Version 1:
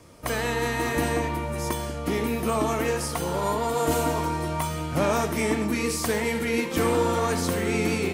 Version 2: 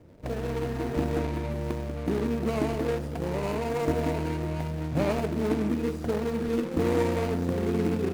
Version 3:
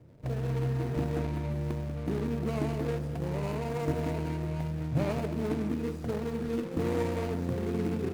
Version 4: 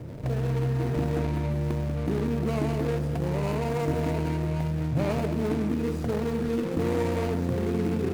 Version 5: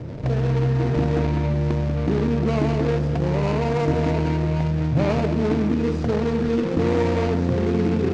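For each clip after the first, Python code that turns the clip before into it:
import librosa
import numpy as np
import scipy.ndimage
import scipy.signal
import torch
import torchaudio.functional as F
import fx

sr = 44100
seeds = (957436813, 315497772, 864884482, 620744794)

y1 = scipy.signal.medfilt(x, 41)
y2 = fx.peak_eq(y1, sr, hz=130.0, db=12.5, octaves=0.42)
y2 = y2 + 10.0 ** (-15.0 / 20.0) * np.pad(y2, (int(204 * sr / 1000.0), 0))[:len(y2)]
y2 = F.gain(torch.from_numpy(y2), -5.5).numpy()
y3 = fx.env_flatten(y2, sr, amount_pct=50)
y3 = F.gain(torch.from_numpy(y3), 1.0).numpy()
y4 = scipy.signal.sosfilt(scipy.signal.butter(4, 6300.0, 'lowpass', fs=sr, output='sos'), y3)
y4 = F.gain(torch.from_numpy(y4), 6.0).numpy()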